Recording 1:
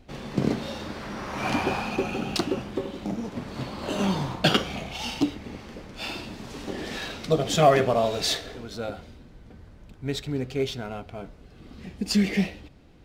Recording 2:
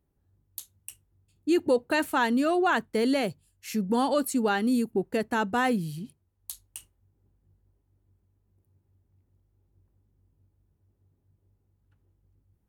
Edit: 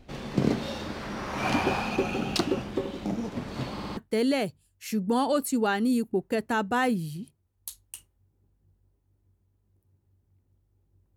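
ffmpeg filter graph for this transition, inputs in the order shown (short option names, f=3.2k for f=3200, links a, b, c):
-filter_complex "[0:a]apad=whole_dur=11.16,atrim=end=11.16,asplit=4[a][b][c][d];[a]atrim=end=3.792[e];[b]atrim=start=3.728:end=3.792[f];[c]atrim=start=3.728:end=3.792[g];[d]atrim=start=3.728:end=3.792[h];[1:a]atrim=start=2.788:end=9.98[i];[e][f]acrossfade=d=0.004:c1=hsin:c2=hsin[j];[j][g]acrossfade=d=0.004:c1=hsin:c2=hsin[k];[k][h]acrossfade=d=0.004:c1=hsin:c2=hsin[l];[l][i]acrossfade=d=0.004:c1=hsin:c2=hsin"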